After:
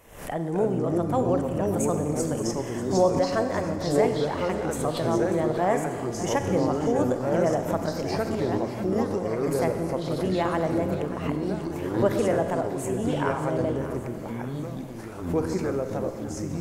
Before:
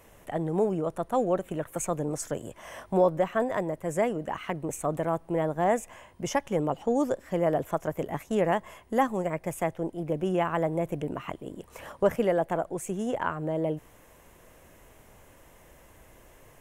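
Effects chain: 8.15–9.50 s: compression, threshold -30 dBFS, peak gain reduction 11 dB; ever faster or slower copies 185 ms, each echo -4 st, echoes 3; on a send: thinning echo 589 ms, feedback 57%, level -14 dB; on the sum: Schroeder reverb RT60 1.7 s, combs from 32 ms, DRR 7.5 dB; swell ahead of each attack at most 89 dB/s

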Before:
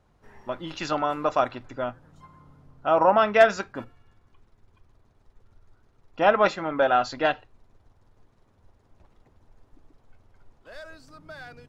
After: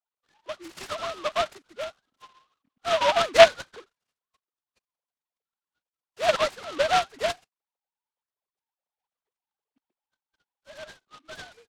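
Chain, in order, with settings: formants replaced by sine waves; spectral noise reduction 16 dB; tilt shelf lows -3.5 dB; delay time shaken by noise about 2 kHz, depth 0.09 ms

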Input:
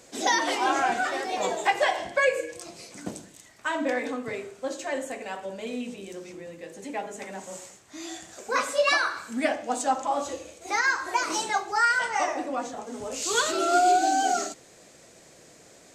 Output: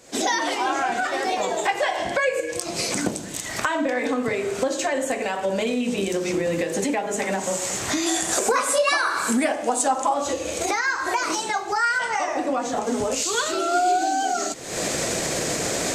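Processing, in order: recorder AGC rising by 67 dB/s; 8.06–10.14 s: fifteen-band graphic EQ 100 Hz -6 dB, 400 Hz +4 dB, 1 kHz +4 dB, 10 kHz +11 dB

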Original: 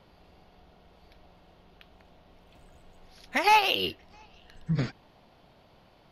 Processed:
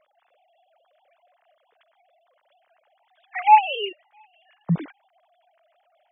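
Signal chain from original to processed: formants replaced by sine waves; trim +5.5 dB

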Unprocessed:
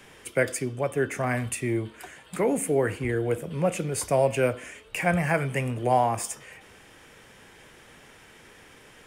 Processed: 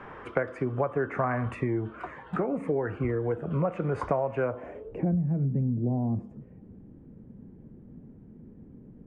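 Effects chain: low-pass sweep 1.2 kHz -> 220 Hz, 4.44–5.20 s; compression 12:1, threshold -30 dBFS, peak gain reduction 16 dB; 1.54–3.65 s: Shepard-style phaser falling 1.9 Hz; trim +6.5 dB

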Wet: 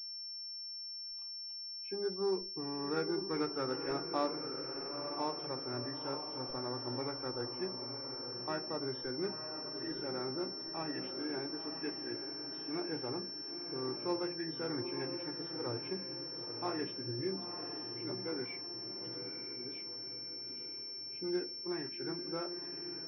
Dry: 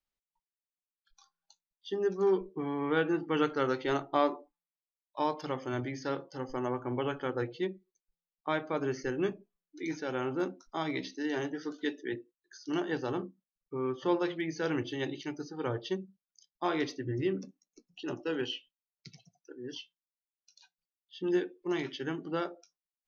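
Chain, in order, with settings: knee-point frequency compression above 1.3 kHz 1.5:1; echo that smears into a reverb 940 ms, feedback 50%, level -7 dB; class-D stage that switches slowly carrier 5.4 kHz; trim -7 dB

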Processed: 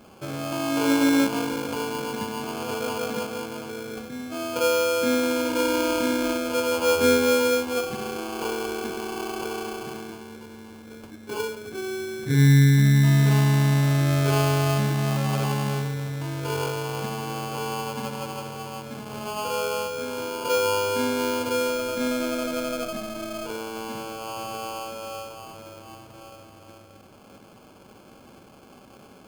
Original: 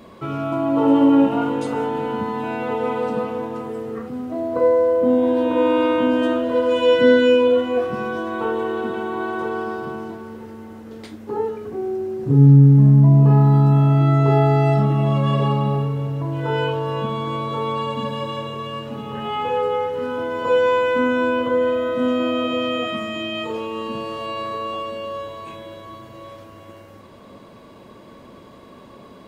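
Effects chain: sample-rate reducer 1.9 kHz, jitter 0%; trim -6 dB

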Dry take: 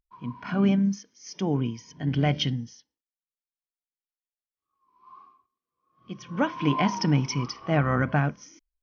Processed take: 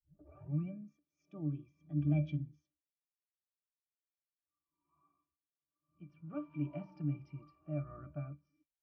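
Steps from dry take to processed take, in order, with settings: tape start-up on the opening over 0.80 s; Doppler pass-by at 3.73 s, 20 m/s, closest 23 m; pitch-class resonator D, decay 0.14 s

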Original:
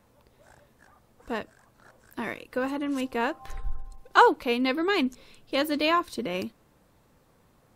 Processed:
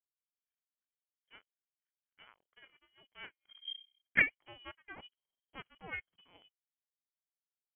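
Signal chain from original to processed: Chebyshev band-stop 230–820 Hz, order 3; power-law waveshaper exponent 2; frequency inversion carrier 3.2 kHz; trim -3.5 dB

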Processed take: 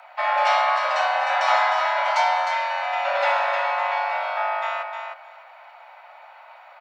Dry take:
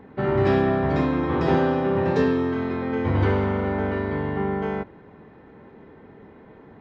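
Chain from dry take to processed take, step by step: tilt EQ +2.5 dB/octave; frequency shift +470 Hz; on a send: feedback delay 307 ms, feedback 16%, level -6.5 dB; on the sum: trim +3.5 dB

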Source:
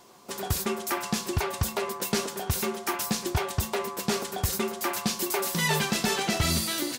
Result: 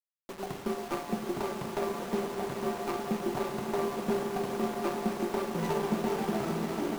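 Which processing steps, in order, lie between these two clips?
median filter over 25 samples; in parallel at -3 dB: peak limiter -25.5 dBFS, peak gain reduction 8.5 dB; on the sum: echo with a slow build-up 143 ms, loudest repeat 5, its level -11.5 dB; crossover distortion -39.5 dBFS; high-pass 180 Hz 24 dB/octave; on a send at -9 dB: reverberation RT60 0.70 s, pre-delay 14 ms; on the sum: bit crusher 7-bit; sliding maximum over 9 samples; trim -3.5 dB

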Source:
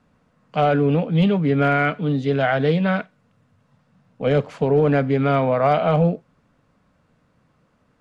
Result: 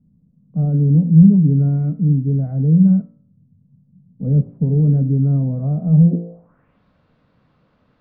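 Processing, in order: de-hum 57.06 Hz, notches 38; low-pass sweep 180 Hz -> 4.1 kHz, 6.04–6.82 s; tape noise reduction on one side only decoder only; trim +3 dB

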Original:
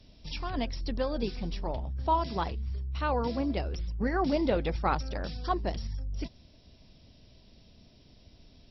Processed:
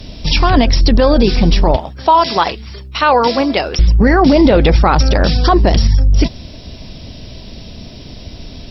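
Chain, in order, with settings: 1.76–3.79 s: high-pass 880 Hz 6 dB/octave; loudness maximiser +25.5 dB; MP3 160 kbps 48 kHz

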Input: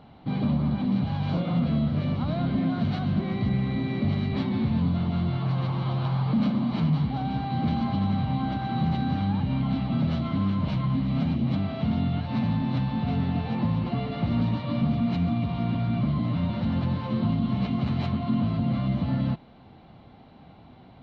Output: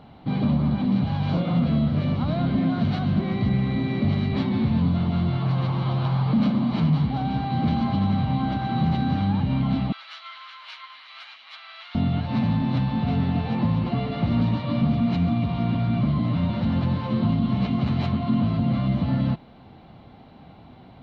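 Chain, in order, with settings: 9.92–11.95 s: high-pass 1.3 kHz 24 dB/octave; trim +3 dB

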